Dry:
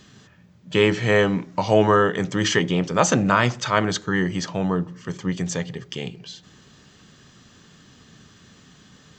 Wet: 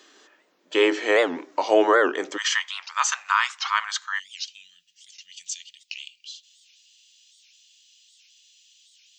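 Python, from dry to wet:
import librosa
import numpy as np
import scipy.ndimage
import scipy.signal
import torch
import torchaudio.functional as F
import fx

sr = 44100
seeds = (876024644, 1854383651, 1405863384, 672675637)

y = fx.ellip_highpass(x, sr, hz=fx.steps((0.0, 310.0), (2.36, 1000.0), (4.18, 2700.0)), order=4, stop_db=60)
y = fx.record_warp(y, sr, rpm=78.0, depth_cents=250.0)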